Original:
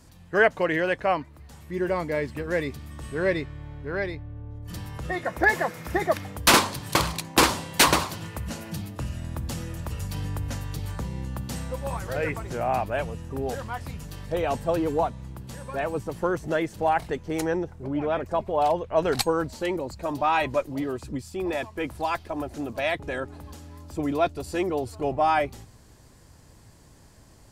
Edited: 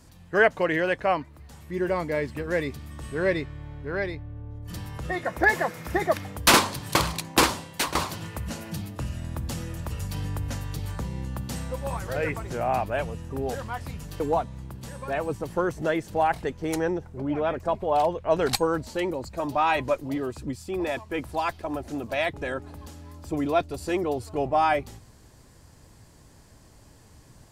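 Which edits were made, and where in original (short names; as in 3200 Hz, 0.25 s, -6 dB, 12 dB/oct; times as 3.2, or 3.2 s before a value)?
7.32–7.95 fade out, to -15 dB
14.2–14.86 cut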